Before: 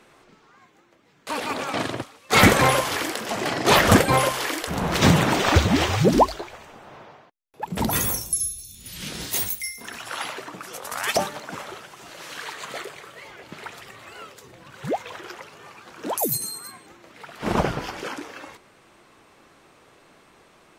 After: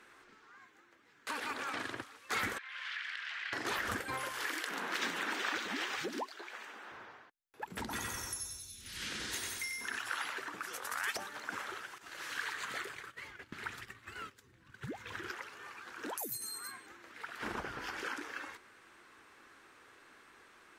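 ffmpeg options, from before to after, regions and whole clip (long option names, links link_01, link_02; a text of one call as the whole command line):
ffmpeg -i in.wav -filter_complex "[0:a]asettb=1/sr,asplit=3[link_01][link_02][link_03];[link_01]atrim=end=2.584[link_04];[link_02]atrim=start=2.58:end=3.53,asetpts=PTS-STARTPTS,afade=type=in:duration=0.004:curve=qsin,afade=type=out:start_time=0.946:duration=0.004:curve=qsin,asuperpass=centerf=2500:order=4:qfactor=1.1,acompressor=threshold=-34dB:ratio=5:attack=3.2:release=140:knee=1:detection=peak[link_05];[link_03]atrim=start=3.526[link_06];[link_04][link_05]acrossfade=duration=0.004:curve1=hsin:curve2=qsin[link_07];[link_07][link_06]acrossfade=duration=0.004:curve1=qsin:curve2=hsin,asettb=1/sr,asplit=3[link_08][link_09][link_10];[link_08]atrim=end=4.554[link_11];[link_09]atrim=start=4.55:end=6.92,asetpts=PTS-STARTPTS,afade=type=in:duration=0.004:curve=qsin,afade=type=out:start_time=2.366:duration=0.004:curve=qsin,highpass=frequency=210:width=0.5412,highpass=frequency=210:width=1.3066,equalizer=frequency=2900:width=0.65:gain=4[link_12];[link_10]atrim=start=6.916[link_13];[link_11][link_12]acrossfade=duration=0.004:curve1=hsin:curve2=qsin[link_14];[link_14][link_13]acrossfade=duration=0.004:curve1=qsin:curve2=hsin,asettb=1/sr,asplit=3[link_15][link_16][link_17];[link_15]atrim=end=7.814[link_18];[link_16]atrim=start=7.81:end=9.99,asetpts=PTS-STARTPTS,afade=type=in:duration=0.004:curve=qsin,afade=type=out:start_time=2.176:duration=0.004:curve=qsin,lowpass=8500,aecho=1:1:93|186|279|372|465|558:0.708|0.333|0.156|0.0735|0.0345|0.0162,atrim=end_sample=96138[link_19];[link_17]atrim=start=9.986[link_20];[link_18][link_19]acrossfade=duration=0.004:curve1=hsin:curve2=qsin[link_21];[link_21][link_20]acrossfade=duration=0.004:curve1=qsin:curve2=hsin,asettb=1/sr,asplit=3[link_22][link_23][link_24];[link_22]atrim=end=11.984[link_25];[link_23]atrim=start=11.98:end=15.31,asetpts=PTS-STARTPTS,afade=type=in:duration=0.004:curve=qsin,afade=type=out:start_time=3.326:duration=0.004:curve=qsin,agate=range=-13dB:threshold=-44dB:ratio=16:release=100:detection=peak,asubboost=boost=8:cutoff=240[link_26];[link_24]atrim=start=15.306[link_27];[link_25][link_26]acrossfade=duration=0.004:curve1=hsin:curve2=qsin[link_28];[link_28][link_27]acrossfade=duration=0.004:curve1=qsin:curve2=hsin,lowshelf=frequency=82:gain=-7,acompressor=threshold=-31dB:ratio=4,equalizer=frequency=160:width_type=o:width=0.67:gain=-11,equalizer=frequency=630:width_type=o:width=0.67:gain=-7,equalizer=frequency=1600:width_type=o:width=0.67:gain=8,volume=-6.5dB" out.wav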